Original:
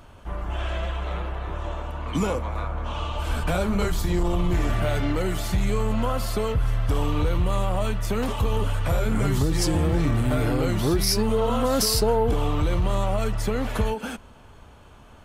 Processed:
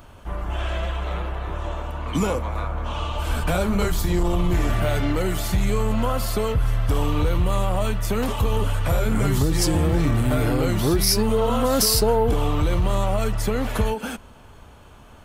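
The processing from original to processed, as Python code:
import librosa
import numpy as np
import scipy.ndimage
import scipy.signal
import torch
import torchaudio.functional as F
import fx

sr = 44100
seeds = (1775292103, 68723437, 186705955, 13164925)

y = fx.high_shelf(x, sr, hz=12000.0, db=8.0)
y = y * librosa.db_to_amplitude(2.0)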